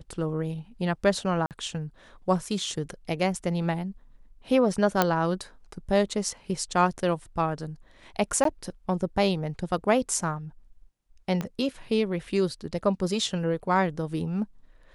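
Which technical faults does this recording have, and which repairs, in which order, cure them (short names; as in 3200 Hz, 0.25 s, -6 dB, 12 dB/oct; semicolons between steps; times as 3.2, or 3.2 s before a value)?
1.46–1.51 gap 48 ms
5.02 pop -6 dBFS
8.44–8.45 gap 13 ms
11.41 pop -17 dBFS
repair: de-click; interpolate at 1.46, 48 ms; interpolate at 8.44, 13 ms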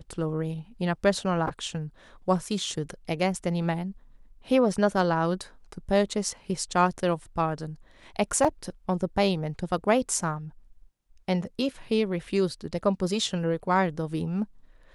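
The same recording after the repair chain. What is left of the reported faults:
11.41 pop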